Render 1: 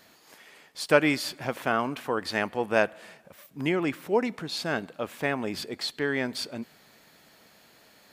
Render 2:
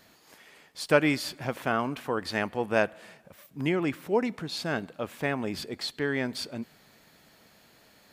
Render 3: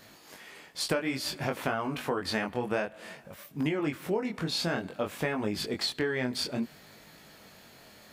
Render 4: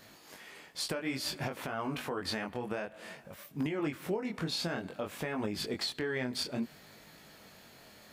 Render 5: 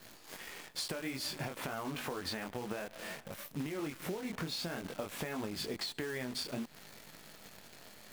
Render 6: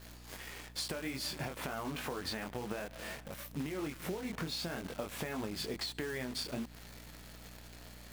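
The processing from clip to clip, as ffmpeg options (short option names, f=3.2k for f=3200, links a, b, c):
-af "lowshelf=f=160:g=7,volume=-2dB"
-af "flanger=delay=19:depth=5.1:speed=0.56,acompressor=threshold=-34dB:ratio=12,volume=8dB"
-af "alimiter=limit=-22dB:level=0:latency=1:release=159,volume=-2dB"
-af "acompressor=threshold=-38dB:ratio=20,acrusher=bits=9:dc=4:mix=0:aa=0.000001,volume=3dB"
-af "aeval=exprs='val(0)+0.00224*(sin(2*PI*60*n/s)+sin(2*PI*2*60*n/s)/2+sin(2*PI*3*60*n/s)/3+sin(2*PI*4*60*n/s)/4+sin(2*PI*5*60*n/s)/5)':c=same"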